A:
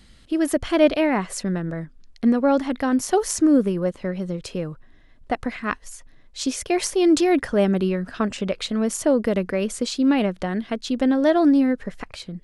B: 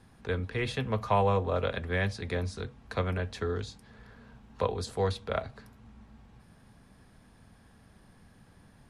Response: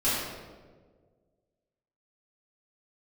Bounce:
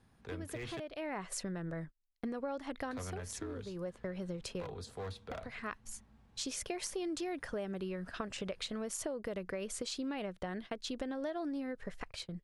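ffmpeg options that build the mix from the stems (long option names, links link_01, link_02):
-filter_complex "[0:a]equalizer=frequency=240:width=1.9:gain=-7.5,acompressor=threshold=-27dB:ratio=6,agate=range=-33dB:threshold=-38dB:ratio=16:detection=peak,volume=-5dB[link_01];[1:a]volume=26.5dB,asoftclip=hard,volume=-26.5dB,volume=-9.5dB,asplit=3[link_02][link_03][link_04];[link_02]atrim=end=0.8,asetpts=PTS-STARTPTS,afade=type=out:start_time=0.796:duration=0.004:curve=hsin[link_05];[link_03]atrim=start=0.8:end=2.82,asetpts=PTS-STARTPTS,volume=0[link_06];[link_04]atrim=start=2.82,asetpts=PTS-STARTPTS,afade=type=in:duration=0.004:curve=hsin[link_07];[link_05][link_06][link_07]concat=n=3:v=0:a=1,asplit=2[link_08][link_09];[link_09]apad=whole_len=548269[link_10];[link_01][link_10]sidechaincompress=threshold=-49dB:ratio=4:attack=16:release=416[link_11];[link_11][link_08]amix=inputs=2:normalize=0,acompressor=threshold=-42dB:ratio=1.5"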